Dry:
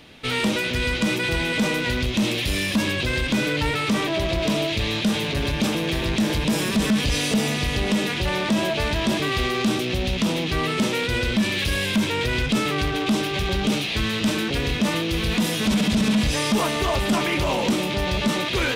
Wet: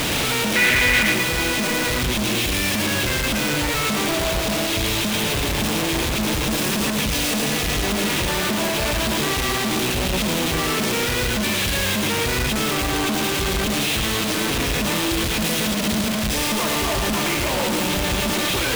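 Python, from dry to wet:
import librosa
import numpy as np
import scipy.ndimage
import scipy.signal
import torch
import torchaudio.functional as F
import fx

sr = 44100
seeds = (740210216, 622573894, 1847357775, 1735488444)

p1 = np.sign(x) * np.sqrt(np.mean(np.square(x)))
p2 = fx.peak_eq(p1, sr, hz=2000.0, db=12.5, octaves=0.77, at=(0.55, 1.12))
y = p2 + fx.echo_single(p2, sr, ms=112, db=-5.5, dry=0)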